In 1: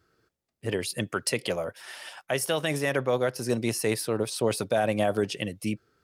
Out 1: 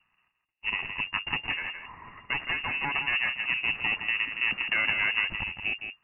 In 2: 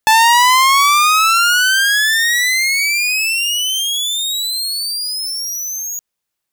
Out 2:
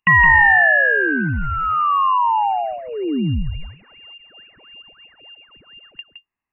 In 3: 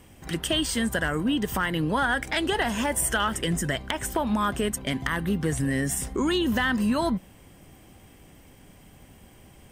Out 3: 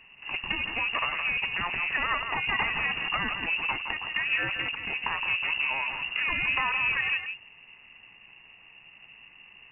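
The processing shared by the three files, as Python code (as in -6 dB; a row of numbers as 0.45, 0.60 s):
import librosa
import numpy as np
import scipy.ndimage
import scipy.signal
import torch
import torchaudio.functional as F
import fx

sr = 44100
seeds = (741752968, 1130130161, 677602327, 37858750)

y = fx.lower_of_two(x, sr, delay_ms=1.1)
y = y + 10.0 ** (-7.5 / 20.0) * np.pad(y, (int(166 * sr / 1000.0), 0))[:len(y)]
y = fx.freq_invert(y, sr, carrier_hz=2800)
y = y * 10.0 ** (-1.0 / 20.0)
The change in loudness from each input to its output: +0.5, -3.0, -1.5 LU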